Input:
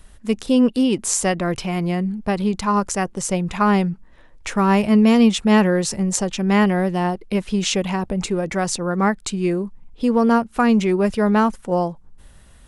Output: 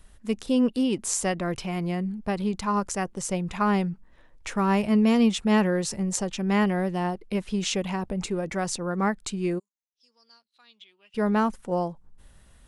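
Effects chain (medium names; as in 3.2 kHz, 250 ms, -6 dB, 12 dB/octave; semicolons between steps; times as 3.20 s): 9.58–11.14 s: band-pass filter 7.3 kHz -> 2.8 kHz, Q 14; trim -6.5 dB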